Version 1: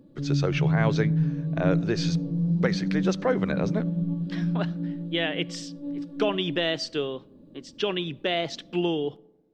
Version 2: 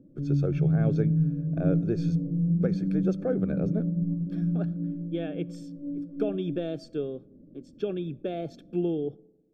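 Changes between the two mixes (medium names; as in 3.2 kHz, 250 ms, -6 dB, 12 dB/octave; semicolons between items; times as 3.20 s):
speech: remove distance through air 170 m; master: add boxcar filter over 45 samples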